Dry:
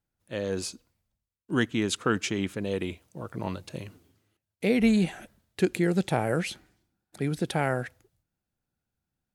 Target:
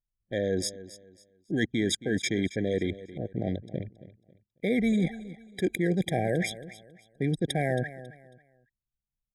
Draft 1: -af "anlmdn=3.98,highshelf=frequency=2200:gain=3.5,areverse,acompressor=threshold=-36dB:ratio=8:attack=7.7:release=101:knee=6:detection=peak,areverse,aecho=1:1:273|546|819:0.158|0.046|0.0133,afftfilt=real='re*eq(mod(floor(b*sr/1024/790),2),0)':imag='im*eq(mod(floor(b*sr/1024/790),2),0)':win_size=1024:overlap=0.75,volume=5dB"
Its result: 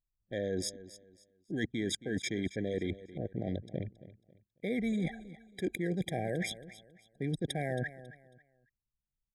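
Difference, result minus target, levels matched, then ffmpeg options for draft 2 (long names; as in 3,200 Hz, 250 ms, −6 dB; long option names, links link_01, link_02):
downward compressor: peak gain reduction +7.5 dB
-af "anlmdn=3.98,highshelf=frequency=2200:gain=3.5,areverse,acompressor=threshold=-27.5dB:ratio=8:attack=7.7:release=101:knee=6:detection=peak,areverse,aecho=1:1:273|546|819:0.158|0.046|0.0133,afftfilt=real='re*eq(mod(floor(b*sr/1024/790),2),0)':imag='im*eq(mod(floor(b*sr/1024/790),2),0)':win_size=1024:overlap=0.75,volume=5dB"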